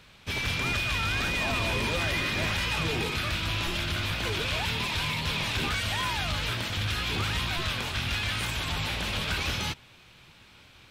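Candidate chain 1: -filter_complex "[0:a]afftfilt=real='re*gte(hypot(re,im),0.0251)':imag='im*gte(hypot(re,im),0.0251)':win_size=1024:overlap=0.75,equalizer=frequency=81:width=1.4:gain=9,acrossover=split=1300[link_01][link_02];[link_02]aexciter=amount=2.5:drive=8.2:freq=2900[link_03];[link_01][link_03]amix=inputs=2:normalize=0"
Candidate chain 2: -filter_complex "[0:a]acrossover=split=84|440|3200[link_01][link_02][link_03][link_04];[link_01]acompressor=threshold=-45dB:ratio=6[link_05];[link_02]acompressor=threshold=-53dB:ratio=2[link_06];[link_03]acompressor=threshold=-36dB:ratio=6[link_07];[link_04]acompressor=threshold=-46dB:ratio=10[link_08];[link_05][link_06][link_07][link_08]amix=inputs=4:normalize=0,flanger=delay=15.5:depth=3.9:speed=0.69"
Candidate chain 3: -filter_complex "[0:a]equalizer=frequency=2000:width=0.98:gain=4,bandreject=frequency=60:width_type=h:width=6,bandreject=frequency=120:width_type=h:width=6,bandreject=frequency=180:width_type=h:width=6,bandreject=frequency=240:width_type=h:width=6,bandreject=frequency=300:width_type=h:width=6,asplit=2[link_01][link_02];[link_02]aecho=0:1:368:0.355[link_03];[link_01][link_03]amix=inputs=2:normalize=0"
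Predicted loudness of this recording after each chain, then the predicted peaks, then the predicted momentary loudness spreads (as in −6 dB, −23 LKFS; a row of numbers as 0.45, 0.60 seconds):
−23.0, −38.0, −25.5 LKFS; −12.0, −26.5, −16.5 dBFS; 2, 4, 3 LU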